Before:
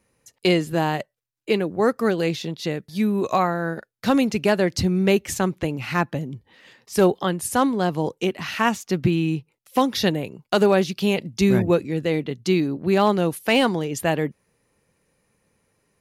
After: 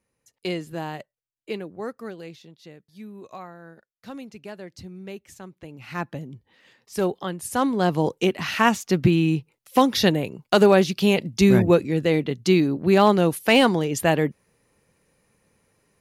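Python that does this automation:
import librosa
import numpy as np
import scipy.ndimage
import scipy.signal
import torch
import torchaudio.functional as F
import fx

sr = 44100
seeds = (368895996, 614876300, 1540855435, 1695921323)

y = fx.gain(x, sr, db=fx.line((1.5, -9.5), (2.51, -19.0), (5.55, -19.0), (6.04, -6.5), (7.38, -6.5), (7.9, 2.0)))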